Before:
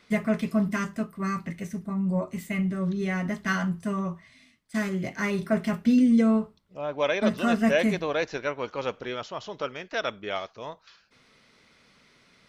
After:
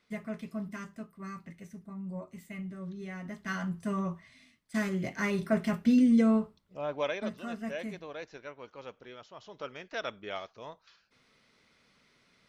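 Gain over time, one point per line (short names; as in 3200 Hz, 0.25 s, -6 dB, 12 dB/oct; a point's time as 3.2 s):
3.19 s -13 dB
3.95 s -3 dB
6.91 s -3 dB
7.39 s -15 dB
9.27 s -15 dB
9.76 s -7 dB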